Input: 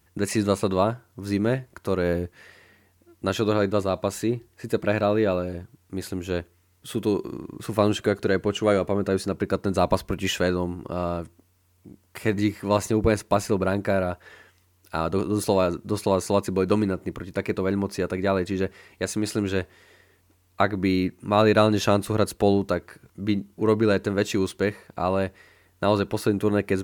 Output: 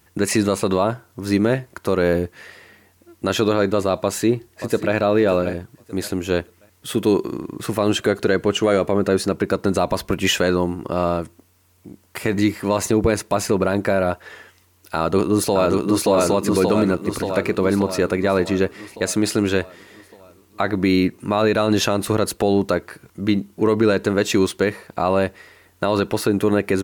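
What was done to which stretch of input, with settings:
0:03.98–0:04.95: delay throw 580 ms, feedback 25%, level −14 dB
0:14.97–0:16.07: delay throw 580 ms, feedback 60%, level −3 dB
whole clip: low-shelf EQ 120 Hz −7.5 dB; brickwall limiter −14.5 dBFS; level +8 dB

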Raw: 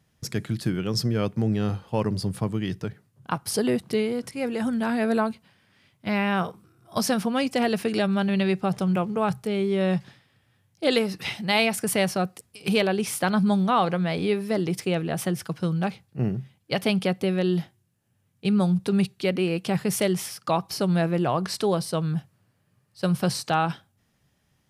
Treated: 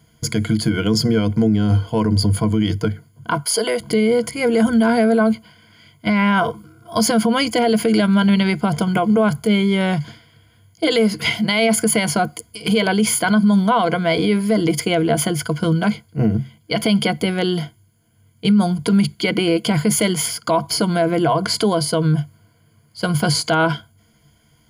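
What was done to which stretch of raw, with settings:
0:03.40–0:03.80: high-pass filter 500 Hz
whole clip: EQ curve with evenly spaced ripples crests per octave 1.8, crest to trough 16 dB; boost into a limiter +16.5 dB; level −7.5 dB

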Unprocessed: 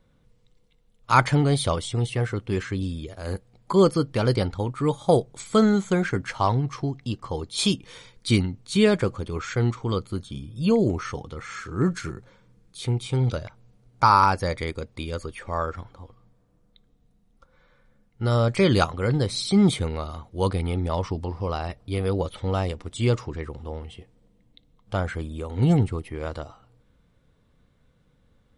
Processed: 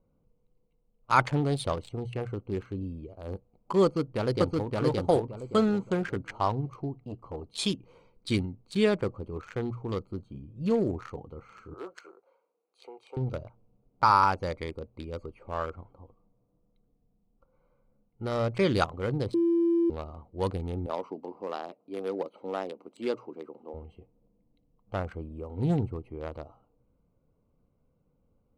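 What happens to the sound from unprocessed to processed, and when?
0:03.83–0:04.76: delay throw 570 ms, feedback 30%, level −1 dB
0:06.95–0:07.59: saturating transformer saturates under 420 Hz
0:11.74–0:13.17: high-pass filter 480 Hz 24 dB per octave
0:19.34–0:19.90: beep over 338 Hz −15.5 dBFS
0:20.86–0:23.74: high-pass filter 230 Hz 24 dB per octave
whole clip: adaptive Wiener filter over 25 samples; bass and treble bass −4 dB, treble −2 dB; mains-hum notches 60/120 Hz; level −4 dB

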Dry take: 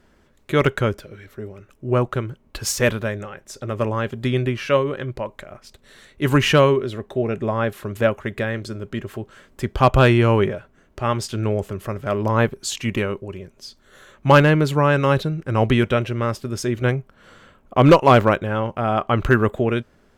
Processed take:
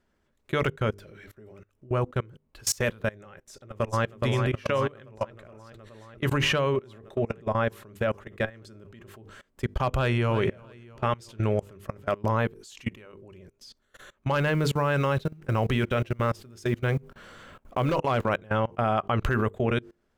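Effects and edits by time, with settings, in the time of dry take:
0:03.42–0:04.04: delay throw 420 ms, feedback 75%, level −3.5 dB
0:05.06–0:06.80: high-shelf EQ 6,300 Hz −5 dB
0:09.95–0:10.39: delay throw 330 ms, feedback 55%, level −15.5 dB
0:12.68–0:13.13: fade out linear, to −9 dB
0:14.38–0:17.99: mu-law and A-law mismatch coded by mu
whole clip: mains-hum notches 50/100/150/200/250/300/350/400/450/500 Hz; dynamic equaliser 310 Hz, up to −4 dB, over −31 dBFS, Q 2; output level in coarse steps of 24 dB

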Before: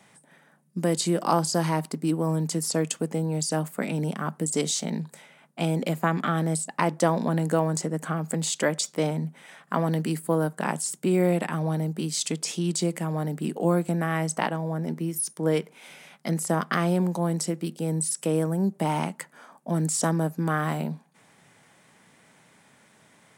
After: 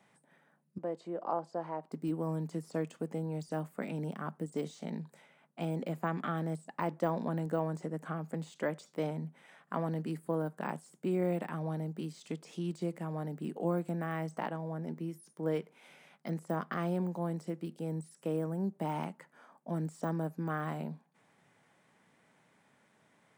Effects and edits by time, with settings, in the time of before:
0:00.78–0:01.92: resonant band-pass 640 Hz, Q 1.2
whole clip: low-shelf EQ 140 Hz −4.5 dB; de-essing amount 85%; parametric band 11,000 Hz −8.5 dB 2.8 octaves; level −8 dB

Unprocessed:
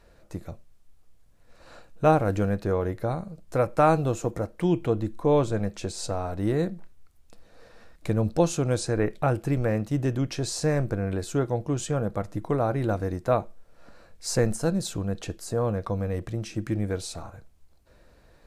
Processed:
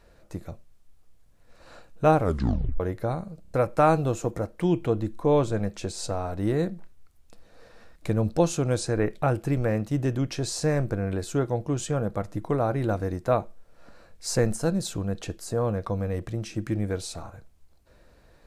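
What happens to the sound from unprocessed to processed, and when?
0:02.21: tape stop 0.59 s
0:03.42: stutter in place 0.03 s, 4 plays

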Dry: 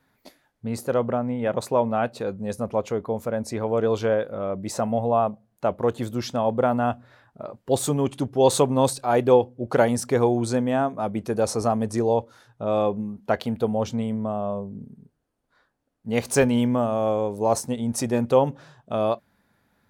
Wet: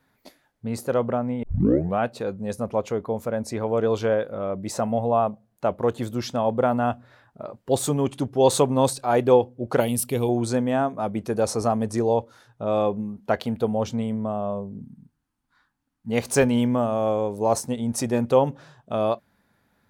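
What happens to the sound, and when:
0:01.43: tape start 0.56 s
0:09.80–0:10.29: drawn EQ curve 170 Hz 0 dB, 1,700 Hz −12 dB, 2,800 Hz +7 dB, 6,200 Hz −6 dB, 12,000 Hz +14 dB
0:14.81–0:16.10: flat-topped bell 500 Hz −14.5 dB 1.1 octaves

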